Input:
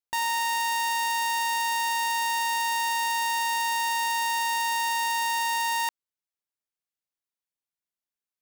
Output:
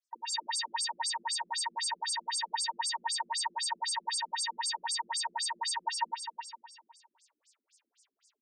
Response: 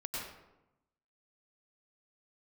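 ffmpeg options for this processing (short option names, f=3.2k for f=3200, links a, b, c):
-filter_complex "[0:a]bandreject=f=160:t=h:w=4,bandreject=f=320:t=h:w=4,bandreject=f=480:t=h:w=4,bandreject=f=640:t=h:w=4,bandreject=f=800:t=h:w=4,bandreject=f=960:t=h:w=4,bandreject=f=1.12k:t=h:w=4,bandreject=f=1.28k:t=h:w=4,bandreject=f=1.44k:t=h:w=4,bandreject=f=1.6k:t=h:w=4,bandreject=f=1.76k:t=h:w=4,bandreject=f=1.92k:t=h:w=4,bandreject=f=2.08k:t=h:w=4,bandreject=f=2.24k:t=h:w=4,bandreject=f=2.4k:t=h:w=4,bandreject=f=2.56k:t=h:w=4,bandreject=f=2.72k:t=h:w=4,bandreject=f=2.88k:t=h:w=4,bandreject=f=3.04k:t=h:w=4,bandreject=f=3.2k:t=h:w=4,bandreject=f=3.36k:t=h:w=4,bandreject=f=3.52k:t=h:w=4,bandreject=f=3.68k:t=h:w=4,bandreject=f=3.84k:t=h:w=4,bandreject=f=4k:t=h:w=4,bandreject=f=4.16k:t=h:w=4,bandreject=f=4.32k:t=h:w=4,bandreject=f=4.48k:t=h:w=4,bandreject=f=4.64k:t=h:w=4,bandreject=f=4.8k:t=h:w=4,bandreject=f=4.96k:t=h:w=4,bandreject=f=5.12k:t=h:w=4,areverse,acompressor=mode=upward:threshold=-56dB:ratio=2.5,areverse,crystalizer=i=5.5:c=0,asoftclip=type=tanh:threshold=-11.5dB,flanger=delay=5.2:depth=8.5:regen=-79:speed=1.8:shape=triangular,asplit=2[a][b];[b]adelay=30,volume=-3.5dB[c];[a][c]amix=inputs=2:normalize=0,aecho=1:1:363|726|1089:0.376|0.105|0.0295[d];[1:a]atrim=start_sample=2205,afade=t=out:st=0.27:d=0.01,atrim=end_sample=12348,asetrate=27342,aresample=44100[e];[d][e]afir=irnorm=-1:irlink=0,afftfilt=real='re*between(b*sr/1024,260*pow(6800/260,0.5+0.5*sin(2*PI*3.9*pts/sr))/1.41,260*pow(6800/260,0.5+0.5*sin(2*PI*3.9*pts/sr))*1.41)':imag='im*between(b*sr/1024,260*pow(6800/260,0.5+0.5*sin(2*PI*3.9*pts/sr))/1.41,260*pow(6800/260,0.5+0.5*sin(2*PI*3.9*pts/sr))*1.41)':win_size=1024:overlap=0.75"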